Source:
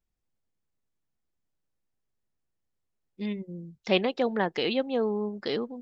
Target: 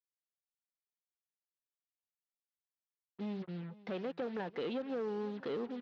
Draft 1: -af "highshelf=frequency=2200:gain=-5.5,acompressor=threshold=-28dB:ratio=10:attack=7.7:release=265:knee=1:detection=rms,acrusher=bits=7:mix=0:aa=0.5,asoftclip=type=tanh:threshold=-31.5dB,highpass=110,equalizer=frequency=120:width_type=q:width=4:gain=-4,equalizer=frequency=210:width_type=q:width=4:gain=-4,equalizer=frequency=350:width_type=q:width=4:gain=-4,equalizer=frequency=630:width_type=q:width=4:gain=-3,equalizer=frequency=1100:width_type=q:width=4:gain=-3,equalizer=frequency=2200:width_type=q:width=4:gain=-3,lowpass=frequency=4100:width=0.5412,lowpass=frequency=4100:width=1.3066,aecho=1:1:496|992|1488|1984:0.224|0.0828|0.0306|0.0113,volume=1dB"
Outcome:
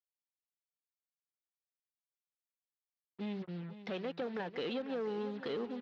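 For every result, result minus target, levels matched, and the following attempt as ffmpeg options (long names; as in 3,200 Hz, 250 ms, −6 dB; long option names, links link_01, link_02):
echo-to-direct +7 dB; 4,000 Hz band +4.5 dB
-af "highshelf=frequency=2200:gain=-5.5,acompressor=threshold=-28dB:ratio=10:attack=7.7:release=265:knee=1:detection=rms,acrusher=bits=7:mix=0:aa=0.5,asoftclip=type=tanh:threshold=-31.5dB,highpass=110,equalizer=frequency=120:width_type=q:width=4:gain=-4,equalizer=frequency=210:width_type=q:width=4:gain=-4,equalizer=frequency=350:width_type=q:width=4:gain=-4,equalizer=frequency=630:width_type=q:width=4:gain=-3,equalizer=frequency=1100:width_type=q:width=4:gain=-3,equalizer=frequency=2200:width_type=q:width=4:gain=-3,lowpass=frequency=4100:width=0.5412,lowpass=frequency=4100:width=1.3066,aecho=1:1:496|992|1488:0.1|0.037|0.0137,volume=1dB"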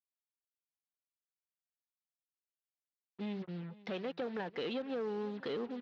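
4,000 Hz band +4.5 dB
-af "highshelf=frequency=2200:gain=-15.5,acompressor=threshold=-28dB:ratio=10:attack=7.7:release=265:knee=1:detection=rms,acrusher=bits=7:mix=0:aa=0.5,asoftclip=type=tanh:threshold=-31.5dB,highpass=110,equalizer=frequency=120:width_type=q:width=4:gain=-4,equalizer=frequency=210:width_type=q:width=4:gain=-4,equalizer=frequency=350:width_type=q:width=4:gain=-4,equalizer=frequency=630:width_type=q:width=4:gain=-3,equalizer=frequency=1100:width_type=q:width=4:gain=-3,equalizer=frequency=2200:width_type=q:width=4:gain=-3,lowpass=frequency=4100:width=0.5412,lowpass=frequency=4100:width=1.3066,aecho=1:1:496|992|1488:0.1|0.037|0.0137,volume=1dB"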